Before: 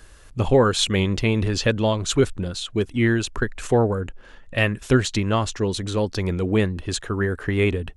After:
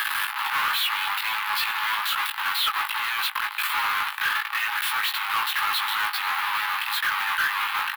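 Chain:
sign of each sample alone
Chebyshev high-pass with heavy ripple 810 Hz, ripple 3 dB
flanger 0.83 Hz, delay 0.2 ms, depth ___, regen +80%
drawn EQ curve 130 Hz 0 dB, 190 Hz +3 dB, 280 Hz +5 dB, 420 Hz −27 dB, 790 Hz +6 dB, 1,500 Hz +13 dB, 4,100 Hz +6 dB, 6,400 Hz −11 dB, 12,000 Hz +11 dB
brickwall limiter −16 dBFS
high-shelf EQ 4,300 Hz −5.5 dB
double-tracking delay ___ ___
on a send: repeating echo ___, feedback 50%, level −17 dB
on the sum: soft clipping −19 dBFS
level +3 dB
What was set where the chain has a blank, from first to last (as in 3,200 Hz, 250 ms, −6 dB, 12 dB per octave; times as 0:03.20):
4.6 ms, 19 ms, −3.5 dB, 483 ms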